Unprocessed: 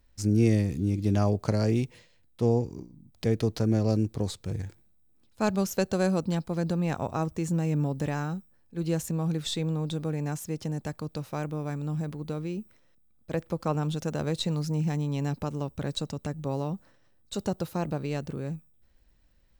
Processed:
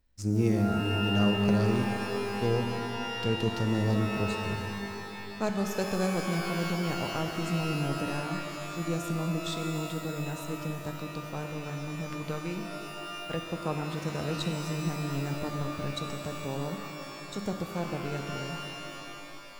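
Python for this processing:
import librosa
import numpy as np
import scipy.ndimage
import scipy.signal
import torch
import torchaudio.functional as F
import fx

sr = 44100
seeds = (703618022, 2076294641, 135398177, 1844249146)

p1 = fx.peak_eq(x, sr, hz=1900.0, db=11.5, octaves=2.5, at=(12.06, 13.34))
p2 = fx.backlash(p1, sr, play_db=-27.0)
p3 = p1 + (p2 * 10.0 ** (-5.5 / 20.0))
p4 = fx.rev_shimmer(p3, sr, seeds[0], rt60_s=3.0, semitones=12, shimmer_db=-2, drr_db=5.0)
y = p4 * 10.0 ** (-7.5 / 20.0)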